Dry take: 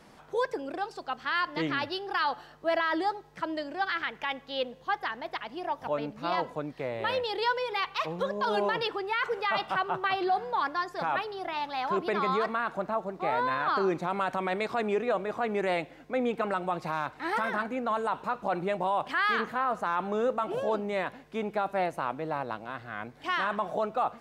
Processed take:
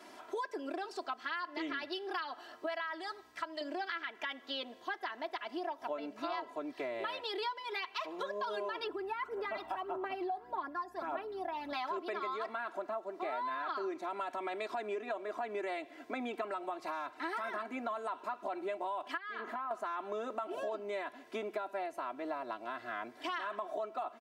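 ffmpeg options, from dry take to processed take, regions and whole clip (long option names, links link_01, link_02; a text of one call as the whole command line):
ffmpeg -i in.wav -filter_complex "[0:a]asettb=1/sr,asplit=3[link_01][link_02][link_03];[link_01]atrim=end=2.664[link_04];[link_02]atrim=start=2.66:end=3.61,asetpts=PTS-STARTPTS,afade=type=in:duration=0.004:curve=qsin,afade=type=out:start_time=0.946:duration=0.004:curve=qsin,equalizer=frequency=340:width=0.69:gain=-11.5,aeval=exprs='val(0)+0.001*(sin(2*PI*60*n/s)+sin(2*PI*2*60*n/s)/2+sin(2*PI*3*60*n/s)/3+sin(2*PI*4*60*n/s)/4+sin(2*PI*5*60*n/s)/5)':channel_layout=same[link_05];[link_03]atrim=start=3.606[link_06];[link_04][link_05]acrossfade=duration=0.004:curve1=hsin:curve2=qsin[link_07];[link_07][link_06]acrossfade=duration=0.004:curve1=qsin:curve2=hsin,asettb=1/sr,asplit=3[link_08][link_09][link_10];[link_08]atrim=end=8.844[link_11];[link_09]atrim=start=8.84:end=11.73,asetpts=PTS-STARTPTS,afade=type=in:duration=0.004:curve=qsin,afade=type=out:start_time=2.886:duration=0.004:curve=qsin,equalizer=frequency=4100:width_type=o:width=2.8:gain=-12.5,aeval=exprs='val(0)+0.00355*(sin(2*PI*60*n/s)+sin(2*PI*2*60*n/s)/2+sin(2*PI*3*60*n/s)/3+sin(2*PI*4*60*n/s)/4+sin(2*PI*5*60*n/s)/5)':channel_layout=same,aphaser=in_gain=1:out_gain=1:delay=1.2:decay=0.47:speed=1.7:type=sinusoidal[link_12];[link_10]atrim=start=11.726[link_13];[link_11][link_12]acrossfade=duration=0.004:curve1=hsin:curve2=qsin[link_14];[link_14][link_13]acrossfade=duration=0.004:curve1=qsin:curve2=hsin,asettb=1/sr,asplit=3[link_15][link_16][link_17];[link_15]atrim=end=19.174[link_18];[link_16]atrim=start=19.17:end=19.71,asetpts=PTS-STARTPTS,afade=type=in:duration=0.004:curve=qsin,afade=type=out:start_time=0.536:duration=0.004:curve=qsin,highpass=160,acompressor=threshold=-35dB:ratio=3:attack=3.2:release=140:knee=1:detection=peak,highshelf=frequency=2700:gain=-10.5[link_19];[link_17]atrim=start=19.706[link_20];[link_18][link_19]acrossfade=duration=0.004:curve1=hsin:curve2=qsin[link_21];[link_21][link_20]acrossfade=duration=0.004:curve1=qsin:curve2=hsin,highpass=280,aecho=1:1:3:0.94,acompressor=threshold=-36dB:ratio=6" out.wav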